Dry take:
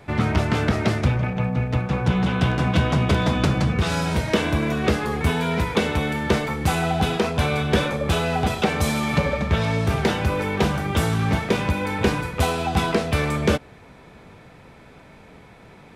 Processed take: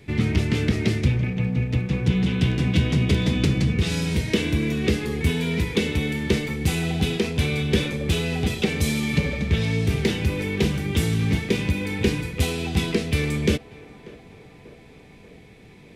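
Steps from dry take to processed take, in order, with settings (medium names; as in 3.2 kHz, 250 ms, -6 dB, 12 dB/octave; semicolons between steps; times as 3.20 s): high-order bell 930 Hz -13.5 dB; band-passed feedback delay 589 ms, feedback 77%, band-pass 770 Hz, level -16.5 dB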